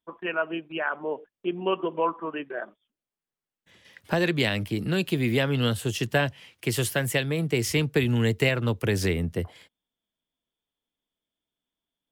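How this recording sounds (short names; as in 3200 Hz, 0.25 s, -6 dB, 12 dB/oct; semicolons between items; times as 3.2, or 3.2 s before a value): noise floor -92 dBFS; spectral tilt -5.0 dB/oct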